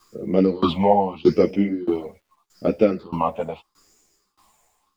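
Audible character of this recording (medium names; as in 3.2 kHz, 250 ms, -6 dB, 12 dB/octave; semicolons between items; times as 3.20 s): phasing stages 6, 0.81 Hz, lowest notch 330–1100 Hz; a quantiser's noise floor 12-bit, dither none; tremolo saw down 1.6 Hz, depth 95%; a shimmering, thickened sound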